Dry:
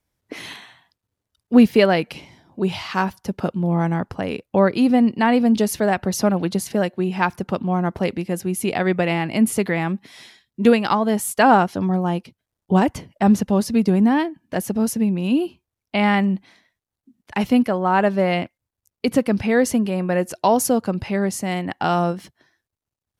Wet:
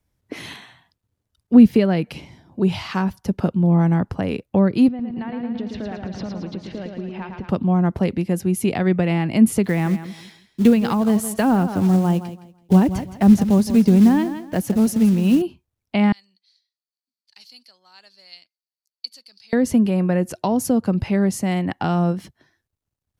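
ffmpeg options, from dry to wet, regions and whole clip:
-filter_complex "[0:a]asettb=1/sr,asplit=3[a][b][c];[a]atrim=end=4.884[d];[b]atrim=start=4.88:end=7.49,asetpts=PTS-STARTPTS,afade=t=in:d=0.004:c=qsin,afade=t=out:st=2.606:d=0.004:c=qsin,lowpass=f=3.9k:w=0.5412,lowpass=f=3.9k:w=1.3066,acompressor=threshold=-31dB:ratio=5:attack=3.2:release=140:knee=1:detection=peak,aecho=1:1:111|222|333|444|555|666|777|888:0.562|0.326|0.189|0.11|0.0636|0.0369|0.0214|0.0124,atrim=end_sample=115101[e];[c]atrim=start=7.486[f];[d][e]acrossfade=d=0.004:c1=hsin:c2=qsin[g];[g][f]acrossfade=d=0.004:c1=qsin:c2=hsin,asettb=1/sr,asplit=3[h][i][j];[h]atrim=end=9.644[k];[i]atrim=start=9.64:end=15.42,asetpts=PTS-STARTPTS,afade=t=in:d=0.004:c=qsin,afade=t=out:st=5.776:d=0.004:c=qsin,acrusher=bits=5:mode=log:mix=0:aa=0.000001,aecho=1:1:166|332|498:0.2|0.0479|0.0115,atrim=end_sample=254898[l];[j]atrim=start=15.416[m];[k][l]acrossfade=d=0.004:c1=hsin:c2=qsin[n];[n][m]acrossfade=d=0.004:c1=qsin:c2=hsin,asettb=1/sr,asplit=3[o][p][q];[o]atrim=end=16.124[r];[p]atrim=start=16.12:end=19.53,asetpts=PTS-STARTPTS,afade=t=in:d=0.004:c=qsin,afade=t=out:st=3.406:d=0.004:c=qsin,bandpass=f=4.5k:t=q:w=12,aemphasis=mode=production:type=75fm[s];[q]atrim=start=19.526[t];[r][s]acrossfade=d=0.004:c1=hsin:c2=qsin[u];[u][t]acrossfade=d=0.004:c1=qsin:c2=hsin,lowshelf=f=260:g=8.5,acrossover=split=330[v][w];[w]acompressor=threshold=-21dB:ratio=5[x];[v][x]amix=inputs=2:normalize=0,volume=-1dB"

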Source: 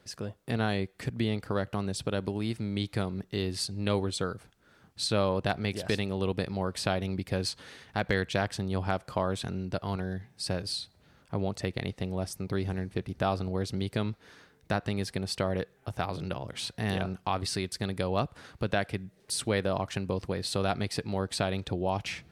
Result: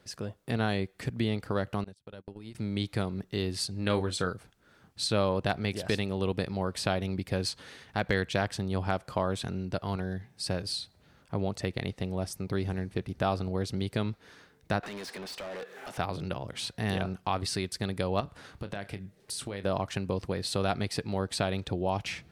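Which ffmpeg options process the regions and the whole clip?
-filter_complex "[0:a]asettb=1/sr,asplit=3[a][b][c];[a]atrim=end=1.844[d];[b]atrim=start=1.84:end=2.55,asetpts=PTS-STARTPTS,afade=t=in:d=0.004:c=qsin,afade=t=out:st=0.706:d=0.004:c=qsin,agate=range=-35dB:threshold=-32dB:ratio=16:release=100:detection=peak,acompressor=threshold=-36dB:ratio=16:attack=3.2:release=140:knee=1:detection=peak,tremolo=f=100:d=0.462[e];[c]atrim=start=2.546[f];[d][e]acrossfade=d=0.004:c1=hsin:c2=qsin[g];[g][f]acrossfade=d=0.004:c1=qsin:c2=hsin,asettb=1/sr,asplit=3[h][i][j];[h]atrim=end=3.754[k];[i]atrim=start=3.75:end=4.3,asetpts=PTS-STARTPTS,afade=t=in:d=0.004:c=qsin,afade=t=out:st=0.546:d=0.004:c=qsin,equalizer=f=1.6k:w=2.6:g=6,asplit=2[l][m];[m]adelay=33,volume=-11.5dB[n];[l][n]amix=inputs=2:normalize=0,atrim=end_sample=24255[o];[j]atrim=start=4.296[p];[k][o]acrossfade=d=0.004:c1=hsin:c2=qsin[q];[q][p]acrossfade=d=0.004:c1=qsin:c2=hsin,asettb=1/sr,asplit=3[r][s][t];[r]atrim=end=14.834[u];[s]atrim=start=14.83:end=15.98,asetpts=PTS-STARTPTS,afade=t=in:d=0.004:c=qsin,afade=t=out:st=1.146:d=0.004:c=qsin,highpass=f=190:w=0.5412,highpass=f=190:w=1.3066,acompressor=threshold=-58dB:ratio=2:attack=3.2:release=140:knee=1:detection=peak,asplit=2[v][w];[w]highpass=f=720:p=1,volume=32dB,asoftclip=type=tanh:threshold=-31.5dB[x];[v][x]amix=inputs=2:normalize=0,lowpass=f=4.3k:p=1,volume=-6dB[y];[t]atrim=start=15.976[z];[u][y]acrossfade=d=0.004:c1=hsin:c2=qsin[aa];[aa][z]acrossfade=d=0.004:c1=qsin:c2=hsin,asettb=1/sr,asplit=3[ab][ac][ad];[ab]atrim=end=18.204[ae];[ac]atrim=start=18.2:end=19.64,asetpts=PTS-STARTPTS,afade=t=in:d=0.004:c=qsin,afade=t=out:st=1.436:d=0.004:c=qsin,acompressor=threshold=-32dB:ratio=12:attack=3.2:release=140:knee=1:detection=peak,asplit=2[af][ag];[ag]adelay=30,volume=-11.5dB[ah];[af][ah]amix=inputs=2:normalize=0,atrim=end_sample=63504[ai];[ad]atrim=start=19.636[aj];[ae][ai]acrossfade=d=0.004:c1=hsin:c2=qsin[ak];[ak][aj]acrossfade=d=0.004:c1=qsin:c2=hsin"

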